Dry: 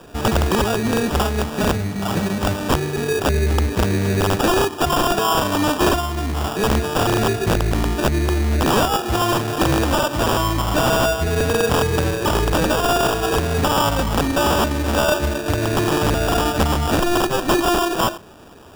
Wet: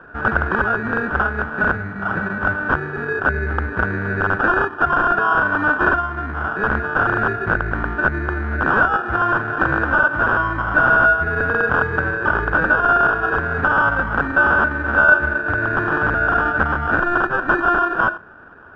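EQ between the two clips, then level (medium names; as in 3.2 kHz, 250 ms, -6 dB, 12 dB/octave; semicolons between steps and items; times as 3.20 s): resonant low-pass 1.5 kHz, resonance Q 12; -5.5 dB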